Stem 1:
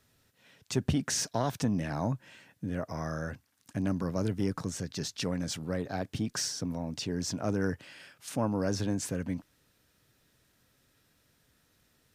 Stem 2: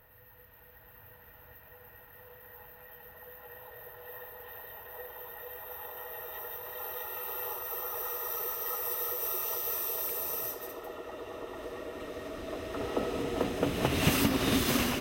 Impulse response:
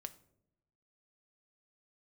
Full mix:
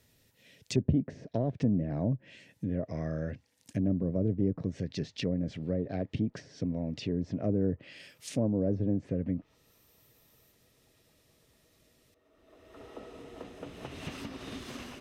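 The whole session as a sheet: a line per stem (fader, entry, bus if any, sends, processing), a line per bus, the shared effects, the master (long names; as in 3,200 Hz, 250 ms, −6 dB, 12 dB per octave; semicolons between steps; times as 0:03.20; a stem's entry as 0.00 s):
+2.0 dB, 0.00 s, no send, flat-topped bell 1,100 Hz −13.5 dB 1.2 octaves
−14.5 dB, 0.00 s, no send, automatic ducking −17 dB, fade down 1.15 s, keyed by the first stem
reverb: not used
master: treble cut that deepens with the level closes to 740 Hz, closed at −26 dBFS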